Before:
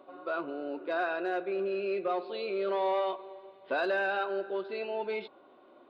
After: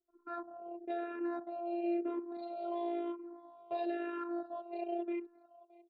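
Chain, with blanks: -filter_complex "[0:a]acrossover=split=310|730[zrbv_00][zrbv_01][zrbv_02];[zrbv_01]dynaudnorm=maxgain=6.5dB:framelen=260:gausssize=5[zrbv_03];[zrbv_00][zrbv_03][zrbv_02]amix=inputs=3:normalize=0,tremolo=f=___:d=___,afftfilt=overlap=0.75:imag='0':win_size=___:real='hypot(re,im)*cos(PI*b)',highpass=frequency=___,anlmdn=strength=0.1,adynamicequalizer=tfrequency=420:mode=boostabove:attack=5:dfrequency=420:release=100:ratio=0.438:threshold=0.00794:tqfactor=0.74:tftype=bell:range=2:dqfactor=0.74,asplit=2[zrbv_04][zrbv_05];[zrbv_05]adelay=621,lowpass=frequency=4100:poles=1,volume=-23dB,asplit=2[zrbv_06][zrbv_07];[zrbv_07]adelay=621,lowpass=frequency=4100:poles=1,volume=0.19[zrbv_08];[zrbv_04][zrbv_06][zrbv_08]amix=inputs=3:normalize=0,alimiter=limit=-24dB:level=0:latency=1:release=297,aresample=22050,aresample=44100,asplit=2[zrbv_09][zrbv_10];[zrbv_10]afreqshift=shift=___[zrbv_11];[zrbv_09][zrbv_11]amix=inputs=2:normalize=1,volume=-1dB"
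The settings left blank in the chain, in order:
250, 0.788, 512, 89, -1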